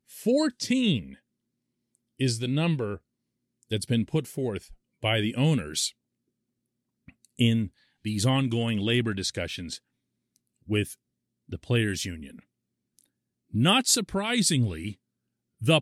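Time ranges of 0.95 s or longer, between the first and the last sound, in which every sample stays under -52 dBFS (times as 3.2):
5.92–7.08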